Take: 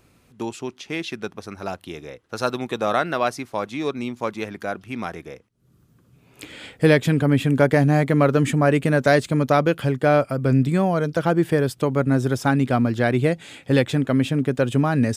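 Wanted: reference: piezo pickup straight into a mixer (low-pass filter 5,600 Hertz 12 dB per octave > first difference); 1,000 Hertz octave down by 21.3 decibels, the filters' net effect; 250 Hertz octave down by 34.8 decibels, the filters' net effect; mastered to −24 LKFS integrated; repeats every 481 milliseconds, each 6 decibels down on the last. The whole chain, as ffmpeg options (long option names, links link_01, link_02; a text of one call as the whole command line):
ffmpeg -i in.wav -af "lowpass=5600,aderivative,equalizer=frequency=250:width_type=o:gain=-8,equalizer=frequency=1000:width_type=o:gain=-5.5,aecho=1:1:481|962|1443|1924|2405|2886:0.501|0.251|0.125|0.0626|0.0313|0.0157,volume=17dB" out.wav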